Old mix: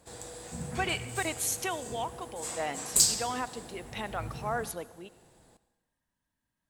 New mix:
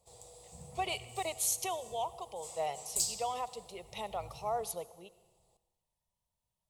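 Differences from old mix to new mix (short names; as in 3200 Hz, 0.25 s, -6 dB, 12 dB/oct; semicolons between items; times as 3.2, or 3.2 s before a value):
background -9.0 dB; master: add fixed phaser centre 660 Hz, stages 4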